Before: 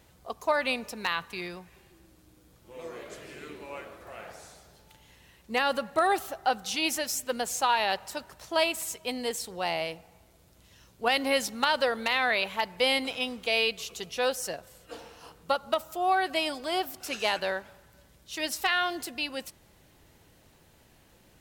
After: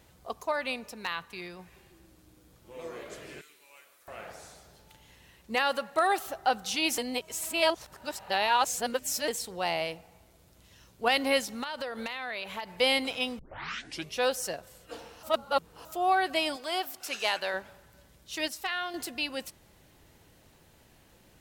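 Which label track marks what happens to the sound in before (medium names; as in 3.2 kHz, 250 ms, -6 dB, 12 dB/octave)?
0.430000	1.590000	gain -4.5 dB
3.410000	4.080000	pre-emphasis filter coefficient 0.97
5.550000	6.260000	bass shelf 230 Hz -11.5 dB
6.980000	9.280000	reverse
11.390000	12.780000	compression, threshold -32 dBFS
13.390000	13.390000	tape start 0.75 s
15.230000	15.850000	reverse
16.560000	17.540000	bass shelf 350 Hz -12 dB
18.480000	18.940000	gain -6.5 dB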